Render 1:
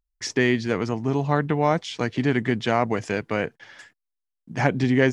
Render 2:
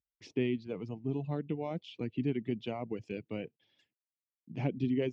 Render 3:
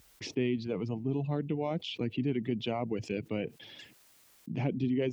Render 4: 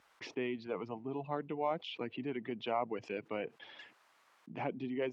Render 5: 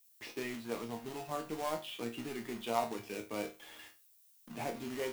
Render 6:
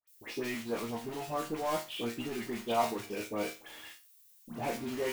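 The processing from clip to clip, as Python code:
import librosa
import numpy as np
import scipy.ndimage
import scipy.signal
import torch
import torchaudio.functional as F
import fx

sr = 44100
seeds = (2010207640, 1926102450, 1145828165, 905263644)

y1 = scipy.signal.sosfilt(scipy.signal.butter(2, 85.0, 'highpass', fs=sr, output='sos'), x)
y1 = fx.dereverb_blind(y1, sr, rt60_s=1.6)
y1 = fx.curve_eq(y1, sr, hz=(340.0, 1700.0, 2600.0, 8700.0), db=(0, -21, -2, -27))
y1 = y1 * librosa.db_to_amplitude(-8.0)
y2 = fx.env_flatten(y1, sr, amount_pct=50)
y3 = fx.bandpass_q(y2, sr, hz=1100.0, q=1.4)
y3 = y3 * librosa.db_to_amplitude(6.0)
y4 = fx.quant_companded(y3, sr, bits=4)
y4 = fx.dmg_noise_colour(y4, sr, seeds[0], colour='violet', level_db=-64.0)
y4 = fx.resonator_bank(y4, sr, root=39, chord='sus4', decay_s=0.28)
y4 = y4 * librosa.db_to_amplitude(10.0)
y5 = fx.dispersion(y4, sr, late='highs', ms=76.0, hz=1600.0)
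y5 = y5 * librosa.db_to_amplitude(4.0)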